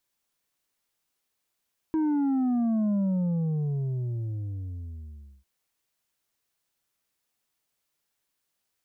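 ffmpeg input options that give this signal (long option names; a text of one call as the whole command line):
ffmpeg -f lavfi -i "aevalsrc='0.0708*clip((3.5-t)/2.5,0,1)*tanh(1.78*sin(2*PI*320*3.5/log(65/320)*(exp(log(65/320)*t/3.5)-1)))/tanh(1.78)':duration=3.5:sample_rate=44100" out.wav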